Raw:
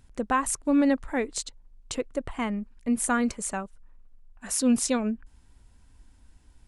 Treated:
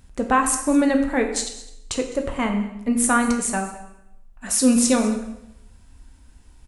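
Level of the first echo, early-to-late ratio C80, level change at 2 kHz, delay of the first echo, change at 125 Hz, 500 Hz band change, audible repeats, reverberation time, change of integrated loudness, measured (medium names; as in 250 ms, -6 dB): -18.5 dB, 9.5 dB, +7.0 dB, 208 ms, +7.0 dB, +6.5 dB, 1, 0.80 s, +6.5 dB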